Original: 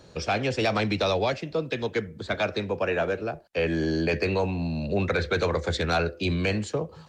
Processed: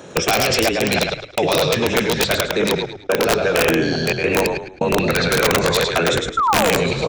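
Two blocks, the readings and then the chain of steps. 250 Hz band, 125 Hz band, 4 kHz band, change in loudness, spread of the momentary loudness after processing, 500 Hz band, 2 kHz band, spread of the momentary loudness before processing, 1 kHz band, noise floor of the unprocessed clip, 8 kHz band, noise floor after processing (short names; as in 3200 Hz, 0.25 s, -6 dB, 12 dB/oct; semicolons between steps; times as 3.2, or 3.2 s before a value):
+6.5 dB, +4.0 dB, +13.0 dB, +9.0 dB, 5 LU, +8.5 dB, +10.0 dB, 5 LU, +10.5 dB, -50 dBFS, n/a, -39 dBFS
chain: reverse delay 0.33 s, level -2.5 dB; thin delay 0.215 s, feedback 81%, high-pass 4900 Hz, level -14 dB; step gate "xxxxxx.xx...xxx" 131 bpm -60 dB; painted sound fall, 6.37–6.71, 420–1400 Hz -26 dBFS; bell 4700 Hz +3.5 dB 1.5 oct; in parallel at +2 dB: negative-ratio compressor -29 dBFS, ratio -0.5; on the sum: downsampling 22050 Hz; HPF 180 Hz 12 dB/oct; LFO notch square 1.7 Hz 310–4500 Hz; on a send: frequency-shifting echo 0.107 s, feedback 34%, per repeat -34 Hz, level -4 dB; on the sum: wrapped overs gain 12.5 dB; gain +4.5 dB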